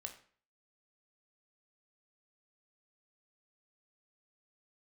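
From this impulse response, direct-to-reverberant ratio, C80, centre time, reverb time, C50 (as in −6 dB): 4.5 dB, 14.5 dB, 13 ms, 0.45 s, 11.0 dB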